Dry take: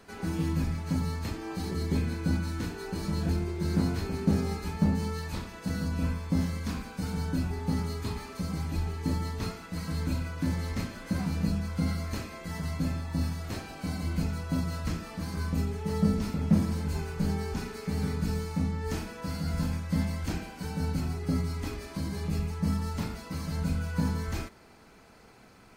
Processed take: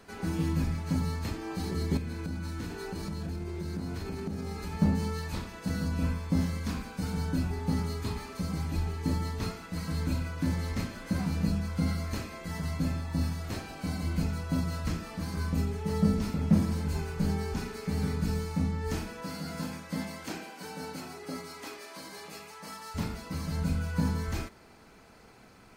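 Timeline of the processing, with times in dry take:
1.97–4.73 s: compression 5:1, threshold -32 dBFS
19.22–22.94 s: high-pass 190 Hz -> 740 Hz

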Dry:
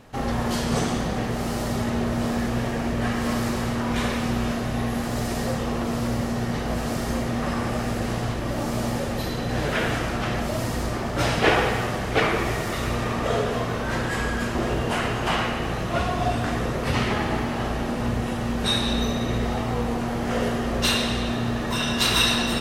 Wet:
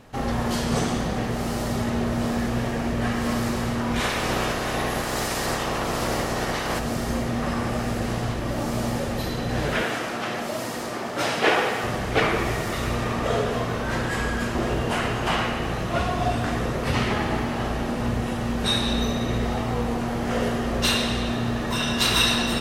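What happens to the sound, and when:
3.99–6.78 s: spectral peaks clipped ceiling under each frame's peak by 16 dB
9.83–11.84 s: Bessel high-pass 280 Hz

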